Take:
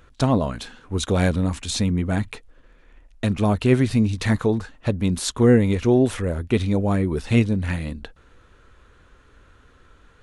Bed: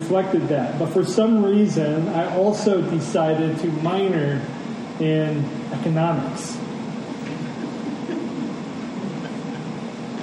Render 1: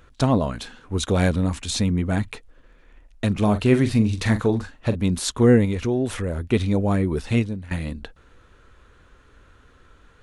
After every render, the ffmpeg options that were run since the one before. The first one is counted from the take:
-filter_complex "[0:a]asettb=1/sr,asplit=3[s0][s1][s2];[s0]atrim=end=3.314[s3];[s1]atrim=start=3.31:end=4.96,asetpts=PTS-STARTPTS,afade=t=in:d=0.004:c=qsin,afade=t=out:st=1.646:d=0.004:c=qsin,asplit=2[s4][s5];[s5]adelay=43,volume=0.282[s6];[s4][s6]amix=inputs=2:normalize=0,atrim=end_sample=72765[s7];[s2]atrim=start=4.956[s8];[s3][s7]acrossfade=d=0.004:c1=hsin:c2=qsin[s9];[s9][s8]acrossfade=d=0.004:c1=qsin:c2=hsin,asettb=1/sr,asplit=3[s10][s11][s12];[s10]atrim=end=5.654[s13];[s11]atrim=start=5.65:end=6.51,asetpts=PTS-STARTPTS,afade=t=in:d=0.004:c=qsin,afade=t=out:st=0.856:d=0.004:c=qsin,acompressor=threshold=0.0794:ratio=2:attack=3.2:release=140:knee=1:detection=peak[s14];[s12]atrim=start=6.506[s15];[s13][s14]acrossfade=d=0.004:c1=hsin:c2=qsin[s16];[s16][s15]acrossfade=d=0.004:c1=qsin:c2=hsin,asplit=2[s17][s18];[s17]atrim=end=7.71,asetpts=PTS-STARTPTS,afade=t=out:st=7.2:d=0.51:silence=0.125893[s19];[s18]atrim=start=7.71,asetpts=PTS-STARTPTS,afade=t=in:d=0.004:c=hsin:silence=0.125893[s20];[s19][s20]concat=n=2:v=0:a=1"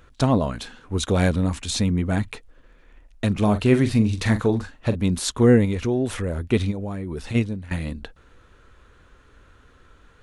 -filter_complex "[0:a]asplit=3[s0][s1][s2];[s0]afade=t=out:st=6.7:d=0.02[s3];[s1]acompressor=threshold=0.0501:ratio=6:attack=3.2:release=140:knee=1:detection=peak,afade=t=in:st=6.7:d=0.02,afade=t=out:st=7.34:d=0.02[s4];[s2]afade=t=in:st=7.34:d=0.02[s5];[s3][s4][s5]amix=inputs=3:normalize=0"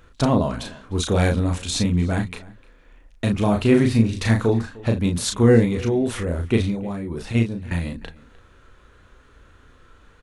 -filter_complex "[0:a]asplit=2[s0][s1];[s1]adelay=35,volume=0.596[s2];[s0][s2]amix=inputs=2:normalize=0,asplit=2[s3][s4];[s4]adelay=303.2,volume=0.0891,highshelf=f=4000:g=-6.82[s5];[s3][s5]amix=inputs=2:normalize=0"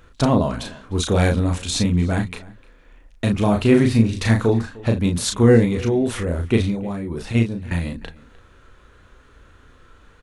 -af "volume=1.19,alimiter=limit=0.708:level=0:latency=1"

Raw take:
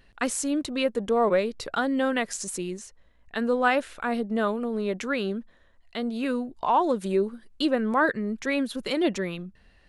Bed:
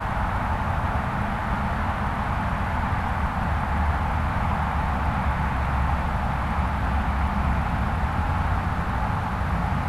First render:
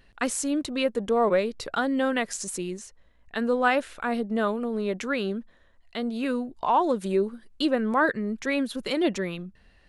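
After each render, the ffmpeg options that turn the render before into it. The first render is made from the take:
-af anull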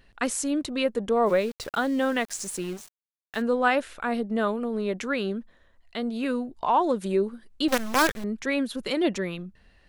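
-filter_complex "[0:a]asettb=1/sr,asplit=3[s0][s1][s2];[s0]atrim=end=1.264[s3];[s1]atrim=start=1.26:end=3.42,asetpts=PTS-STARTPTS,afade=t=in:d=0.004:c=qsin,afade=t=out:st=2.156:d=0.004:c=qsin,aeval=exprs='val(0)*gte(abs(val(0)),0.0106)':c=same[s4];[s2]atrim=start=3.416[s5];[s3][s4]acrossfade=d=0.004:c1=hsin:c2=qsin[s6];[s6][s5]acrossfade=d=0.004:c1=qsin:c2=hsin,asettb=1/sr,asplit=3[s7][s8][s9];[s7]atrim=end=7.684[s10];[s8]atrim=start=7.68:end=8.24,asetpts=PTS-STARTPTS,afade=t=in:d=0.004:c=qsin,afade=t=out:st=0.556:d=0.004:c=qsin,acrusher=bits=4:dc=4:mix=0:aa=0.000001[s11];[s9]atrim=start=8.236[s12];[s10][s11]acrossfade=d=0.004:c1=hsin:c2=qsin[s13];[s13][s12]acrossfade=d=0.004:c1=qsin:c2=hsin"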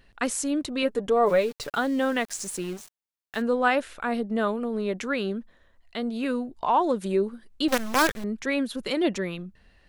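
-filter_complex "[0:a]asettb=1/sr,asplit=3[s0][s1][s2];[s0]atrim=end=0.824[s3];[s1]atrim=start=0.82:end=1.78,asetpts=PTS-STARTPTS,afade=t=in:d=0.004:c=qsin,afade=t=out:st=0.956:d=0.004:c=qsin,aecho=1:1:6.9:0.47,atrim=end_sample=42336[s4];[s2]atrim=start=1.776[s5];[s3][s4]acrossfade=d=0.004:c1=hsin:c2=qsin[s6];[s6][s5]acrossfade=d=0.004:c1=qsin:c2=hsin"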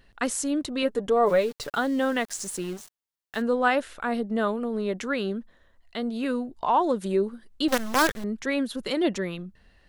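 -af "equalizer=f=2400:w=7.3:g=-4"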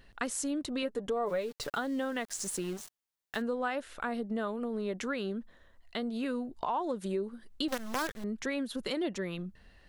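-af "acompressor=threshold=0.0224:ratio=3"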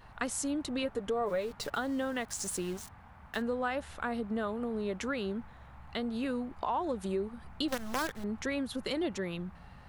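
-filter_complex "[1:a]volume=0.0355[s0];[0:a][s0]amix=inputs=2:normalize=0"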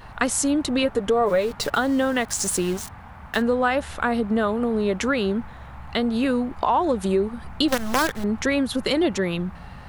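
-af "volume=3.98"

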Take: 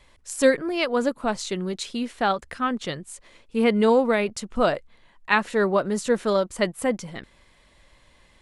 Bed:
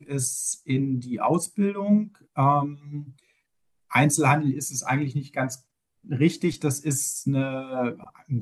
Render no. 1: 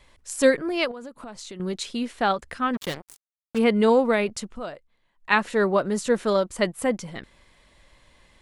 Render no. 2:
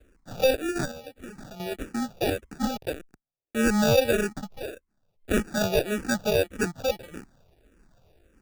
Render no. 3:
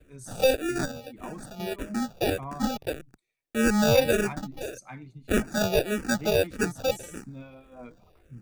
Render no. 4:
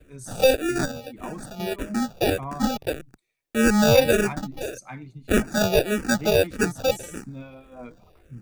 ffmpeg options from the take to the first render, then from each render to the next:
-filter_complex "[0:a]asettb=1/sr,asplit=3[s0][s1][s2];[s0]atrim=end=0.914[s3];[s1]atrim=start=0.91:end=1.6,asetpts=PTS-STARTPTS,afade=t=in:d=0.004:c=qsin,afade=t=out:st=0.686:d=0.004:c=qsin,acompressor=threshold=0.0158:ratio=6:attack=3.2:release=140:knee=1:detection=peak[s4];[s2]atrim=start=1.596[s5];[s3][s4]acrossfade=d=0.004:c1=hsin:c2=qsin[s6];[s6][s5]acrossfade=d=0.004:c1=qsin:c2=hsin,asplit=3[s7][s8][s9];[s7]afade=t=out:st=2.73:d=0.02[s10];[s8]acrusher=bits=4:mix=0:aa=0.5,afade=t=in:st=2.73:d=0.02,afade=t=out:st=3.57:d=0.02[s11];[s9]afade=t=in:st=3.57:d=0.02[s12];[s10][s11][s12]amix=inputs=3:normalize=0,asplit=3[s13][s14][s15];[s13]atrim=end=4.6,asetpts=PTS-STARTPTS,afade=t=out:st=4.46:d=0.14:silence=0.211349[s16];[s14]atrim=start=4.6:end=5.17,asetpts=PTS-STARTPTS,volume=0.211[s17];[s15]atrim=start=5.17,asetpts=PTS-STARTPTS,afade=t=in:d=0.14:silence=0.211349[s18];[s16][s17][s18]concat=n=3:v=0:a=1"
-filter_complex "[0:a]acrusher=samples=42:mix=1:aa=0.000001,asplit=2[s0][s1];[s1]afreqshift=-1.7[s2];[s0][s2]amix=inputs=2:normalize=1"
-filter_complex "[1:a]volume=0.119[s0];[0:a][s0]amix=inputs=2:normalize=0"
-af "volume=1.58"

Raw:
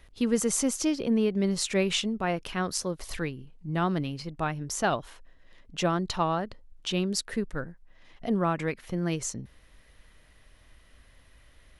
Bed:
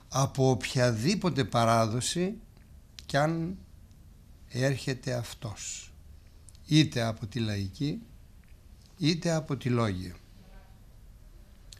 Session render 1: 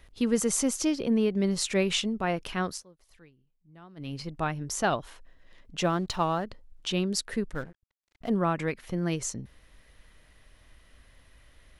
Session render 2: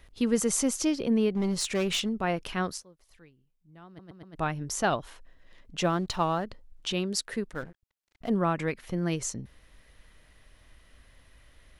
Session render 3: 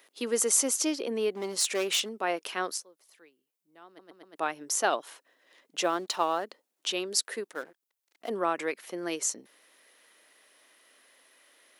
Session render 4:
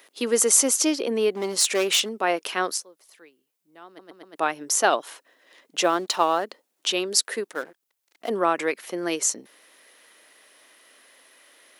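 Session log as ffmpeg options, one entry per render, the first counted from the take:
-filter_complex "[0:a]asettb=1/sr,asplit=3[s0][s1][s2];[s0]atrim=end=5.834[s3];[s1]atrim=start=5.83:end=6.45,asetpts=PTS-STARTPTS,afade=t=in:d=0.004:c=qsin,afade=t=out:st=0.616:d=0.004:c=qsin,aeval=exprs='sgn(val(0))*max(abs(val(0))-0.00224,0)':c=same[s4];[s2]atrim=start=6.446[s5];[s3][s4]acrossfade=d=0.004:c1=hsin:c2=qsin[s6];[s6][s5]acrossfade=d=0.004:c1=qsin:c2=hsin,asettb=1/sr,asplit=3[s7][s8][s9];[s7]atrim=end=7.534[s10];[s8]atrim=start=7.53:end=8.3,asetpts=PTS-STARTPTS,afade=t=in:d=0.004:c=qsin,afade=t=out:st=0.766:d=0.004:c=qsin,aeval=exprs='sgn(val(0))*max(abs(val(0))-0.00473,0)':c=same[s11];[s9]atrim=start=8.296[s12];[s10][s11]acrossfade=d=0.004:c1=hsin:c2=qsin[s13];[s13][s12]acrossfade=d=0.004:c1=qsin:c2=hsin,asplit=3[s14][s15][s16];[s14]atrim=end=2.83,asetpts=PTS-STARTPTS,afade=t=out:st=2.65:d=0.18:silence=0.0668344[s17];[s15]atrim=start=2.83:end=3.96,asetpts=PTS-STARTPTS,volume=0.0668[s18];[s16]atrim=start=3.96,asetpts=PTS-STARTPTS,afade=t=in:d=0.18:silence=0.0668344[s19];[s17][s18][s19]concat=n=3:v=0:a=1"
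-filter_complex "[0:a]asettb=1/sr,asplit=3[s0][s1][s2];[s0]atrim=end=1.324[s3];[s1]atrim=start=1.32:end=2.09,asetpts=PTS-STARTPTS,afade=t=in:d=0.004:c=qsin,afade=t=out:st=0.766:d=0.004:c=qsin,volume=15,asoftclip=hard,volume=0.0668[s4];[s2]atrim=start=2.086[s5];[s3][s4]acrossfade=d=0.004:c1=hsin:c2=qsin[s6];[s6][s5]acrossfade=d=0.004:c1=qsin:c2=hsin,asettb=1/sr,asplit=3[s7][s8][s9];[s7]atrim=end=6.934[s10];[s8]atrim=start=6.93:end=7.63,asetpts=PTS-STARTPTS,afade=t=in:d=0.004:c=qsin,afade=t=out:st=0.696:d=0.004:c=qsin,lowshelf=f=140:g=-9[s11];[s9]atrim=start=7.626[s12];[s10][s11]acrossfade=d=0.004:c1=hsin:c2=qsin[s13];[s13][s12]acrossfade=d=0.004:c1=qsin:c2=hsin,asplit=5[s14][s15][s16][s17][s18];[s14]atrim=end=3.992[s19];[s15]atrim=start=3.868:end=3.992[s20];[s16]atrim=start=3.868:end=3.992[s21];[s17]atrim=start=3.868:end=3.992[s22];[s18]atrim=start=4.348[s23];[s19][s20]acrossfade=d=0.004:c1=hsin:c2=hsin[s24];[s24][s21]acrossfade=d=0.004:c1=hsin:c2=hsin[s25];[s25][s22]acrossfade=d=0.004:c1=hsin:c2=hsin[s26];[s26][s23]acrossfade=d=0.004:c1=hsin:c2=hsin"
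-af "highpass=f=320:w=0.5412,highpass=f=320:w=1.3066,highshelf=f=7000:g=9"
-af "volume=2.11"

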